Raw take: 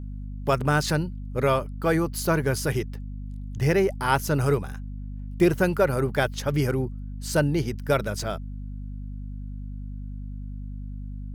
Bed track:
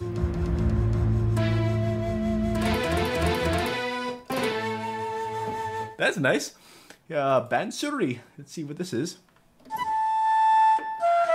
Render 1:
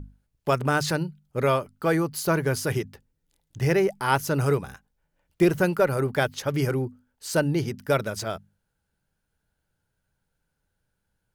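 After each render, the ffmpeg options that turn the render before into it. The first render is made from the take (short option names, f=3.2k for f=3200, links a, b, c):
-af "bandreject=f=50:t=h:w=6,bandreject=f=100:t=h:w=6,bandreject=f=150:t=h:w=6,bandreject=f=200:t=h:w=6,bandreject=f=250:t=h:w=6"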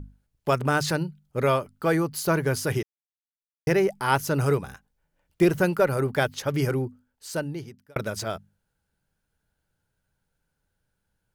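-filter_complex "[0:a]asplit=4[a][b][c][d];[a]atrim=end=2.83,asetpts=PTS-STARTPTS,afade=t=out:st=2.826:d=0.004:c=hsin[e];[b]atrim=start=2.83:end=3.67,asetpts=PTS-STARTPTS,volume=0[f];[c]atrim=start=3.67:end=7.96,asetpts=PTS-STARTPTS,afade=t=in:d=0.004:c=hsin,afade=t=out:st=3.11:d=1.18[g];[d]atrim=start=7.96,asetpts=PTS-STARTPTS,afade=t=in:d=0.004:c=hsin[h];[e][f][g][h]concat=n=4:v=0:a=1"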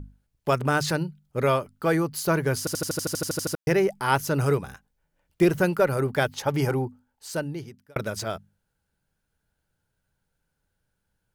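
-filter_complex "[0:a]asettb=1/sr,asplit=3[a][b][c];[a]atrim=end=6.334[d];[b]atrim=start=6.33:end=7.28,asetpts=PTS-STARTPTS,afade=t=in:d=0.004:c=qsin,afade=t=out:st=0.946:d=0.004:c=qsin,equalizer=f=840:t=o:w=0.41:g=11[e];[c]atrim=start=7.276[f];[d][e]acrossfade=d=0.004:c1=hsin:c2=qsin[g];[g][f]acrossfade=d=0.004:c1=qsin:c2=hsin,asplit=13[h][i][j][k][l][m][n][o][p][q][r][s][t];[h]atrim=end=2.672[u];[i]atrim=start=2.588:end=2.672[v];[j]atrim=start=2.588:end=2.672[w];[k]atrim=start=2.588:end=2.672[x];[l]atrim=start=2.588:end=2.672[y];[m]atrim=start=2.588:end=2.672[z];[n]atrim=start=2.588:end=2.672[aa];[o]atrim=start=2.588:end=2.672[ab];[p]atrim=start=2.588:end=2.672[ac];[q]atrim=start=2.588:end=2.672[ad];[r]atrim=start=2.588:end=2.672[ae];[s]atrim=start=2.588:end=2.672[af];[t]atrim=start=3.548[ag];[u][v]acrossfade=d=0.004:c1=hsin:c2=hsin[ah];[ah][w]acrossfade=d=0.004:c1=hsin:c2=hsin[ai];[ai][x]acrossfade=d=0.004:c1=hsin:c2=hsin[aj];[aj][y]acrossfade=d=0.004:c1=hsin:c2=hsin[ak];[ak][z]acrossfade=d=0.004:c1=hsin:c2=hsin[al];[al][aa]acrossfade=d=0.004:c1=hsin:c2=hsin[am];[am][ab]acrossfade=d=0.004:c1=hsin:c2=hsin[an];[an][ac]acrossfade=d=0.004:c1=hsin:c2=hsin[ao];[ao][ad]acrossfade=d=0.004:c1=hsin:c2=hsin[ap];[ap][ae]acrossfade=d=0.004:c1=hsin:c2=hsin[aq];[aq][af]acrossfade=d=0.004:c1=hsin:c2=hsin[ar];[ar][ag]acrossfade=d=0.004:c1=hsin:c2=hsin"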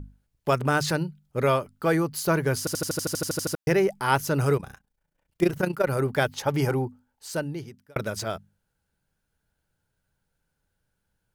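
-filter_complex "[0:a]asettb=1/sr,asplit=3[a][b][c];[a]atrim=end=4.574[d];[b]atrim=start=4.57:end=5.87,asetpts=PTS-STARTPTS,afade=t=in:d=0.004:c=qsin,afade=t=out:st=1.296:d=0.004:c=qsin,tremolo=f=29:d=0.788[e];[c]atrim=start=5.866[f];[d][e]acrossfade=d=0.004:c1=hsin:c2=qsin[g];[g][f]acrossfade=d=0.004:c1=qsin:c2=hsin"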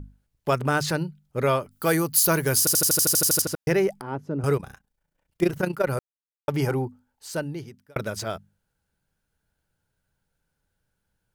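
-filter_complex "[0:a]asettb=1/sr,asplit=3[a][b][c];[a]atrim=end=1.714[d];[b]atrim=start=1.71:end=3.42,asetpts=PTS-STARTPTS,afade=t=in:d=0.004:c=qsin,afade=t=out:st=1.706:d=0.004:c=qsin,aemphasis=mode=production:type=75kf[e];[c]atrim=start=3.416[f];[d][e]acrossfade=d=0.004:c1=hsin:c2=qsin[g];[g][f]acrossfade=d=0.004:c1=qsin:c2=hsin,asettb=1/sr,asplit=3[h][i][j];[h]atrim=end=4.014[k];[i]atrim=start=4.01:end=4.44,asetpts=PTS-STARTPTS,afade=t=in:d=0.004:c=qsin,afade=t=out:st=0.426:d=0.004:c=qsin,bandpass=f=260:t=q:w=1.2[l];[j]atrim=start=4.436[m];[k][l]acrossfade=d=0.004:c1=hsin:c2=qsin[n];[n][m]acrossfade=d=0.004:c1=qsin:c2=hsin,asplit=3[o][p][q];[o]atrim=end=5.99,asetpts=PTS-STARTPTS,afade=t=out:st=5.986:d=0.004:c=hsin[r];[p]atrim=start=5.99:end=6.48,asetpts=PTS-STARTPTS,volume=0[s];[q]atrim=start=6.48,asetpts=PTS-STARTPTS,afade=t=in:d=0.004:c=hsin[t];[r][s][t]concat=n=3:v=0:a=1"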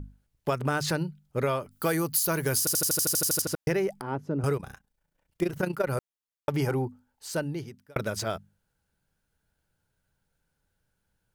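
-af "acompressor=threshold=-23dB:ratio=6"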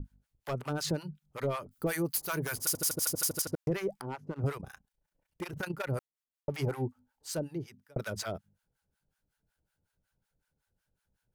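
-filter_complex "[0:a]asoftclip=type=hard:threshold=-22.5dB,acrossover=split=730[a][b];[a]aeval=exprs='val(0)*(1-1/2+1/2*cos(2*PI*5.4*n/s))':c=same[c];[b]aeval=exprs='val(0)*(1-1/2-1/2*cos(2*PI*5.4*n/s))':c=same[d];[c][d]amix=inputs=2:normalize=0"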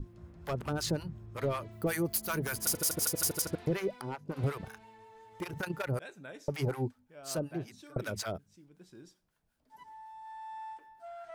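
-filter_complex "[1:a]volume=-24.5dB[a];[0:a][a]amix=inputs=2:normalize=0"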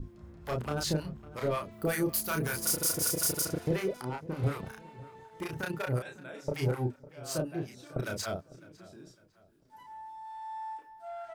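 -filter_complex "[0:a]asplit=2[a][b];[b]adelay=32,volume=-3dB[c];[a][c]amix=inputs=2:normalize=0,asplit=2[d][e];[e]adelay=553,lowpass=f=3k:p=1,volume=-19dB,asplit=2[f][g];[g]adelay=553,lowpass=f=3k:p=1,volume=0.37,asplit=2[h][i];[i]adelay=553,lowpass=f=3k:p=1,volume=0.37[j];[d][f][h][j]amix=inputs=4:normalize=0"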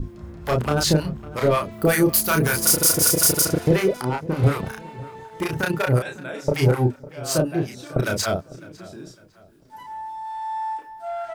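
-af "volume=12dB"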